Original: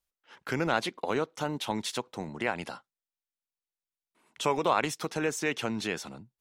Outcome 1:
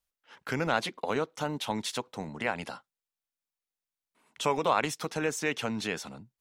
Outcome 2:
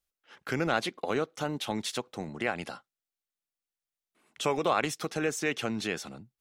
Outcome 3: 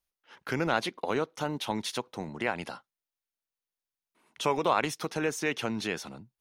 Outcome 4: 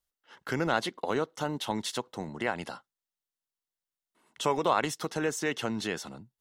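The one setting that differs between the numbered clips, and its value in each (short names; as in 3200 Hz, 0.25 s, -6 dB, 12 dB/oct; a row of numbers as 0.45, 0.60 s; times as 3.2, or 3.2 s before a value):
notch, frequency: 350, 950, 7600, 2400 Hz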